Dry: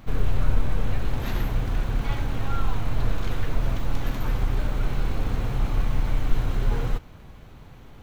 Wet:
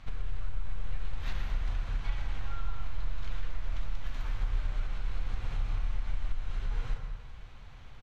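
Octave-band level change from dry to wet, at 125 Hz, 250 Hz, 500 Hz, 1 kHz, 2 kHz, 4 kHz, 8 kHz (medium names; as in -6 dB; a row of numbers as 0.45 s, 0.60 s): -12.0 dB, -19.5 dB, -17.5 dB, -12.5 dB, -9.5 dB, -9.0 dB, no reading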